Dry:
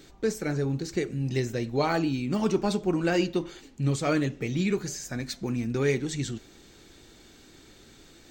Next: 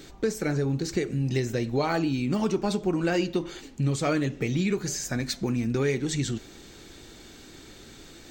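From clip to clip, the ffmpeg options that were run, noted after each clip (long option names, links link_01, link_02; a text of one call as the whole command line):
ffmpeg -i in.wav -af "acompressor=threshold=-30dB:ratio=2.5,volume=5.5dB" out.wav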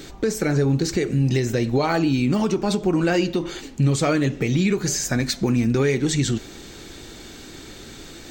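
ffmpeg -i in.wav -af "alimiter=limit=-19dB:level=0:latency=1:release=89,volume=7.5dB" out.wav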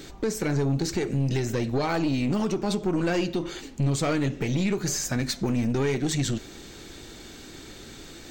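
ffmpeg -i in.wav -af "aeval=exprs='(tanh(6.31*val(0)+0.35)-tanh(0.35))/6.31':channel_layout=same,volume=-2.5dB" out.wav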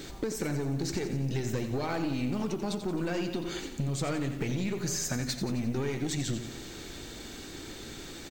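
ffmpeg -i in.wav -af "acompressor=threshold=-29dB:ratio=6,acrusher=bits=9:mix=0:aa=0.000001,aecho=1:1:88|176|264|352|440|528:0.316|0.177|0.0992|0.0555|0.0311|0.0174" out.wav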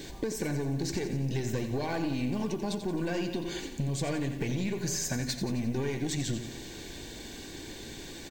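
ffmpeg -i in.wav -af "asuperstop=centerf=1300:order=20:qfactor=6" out.wav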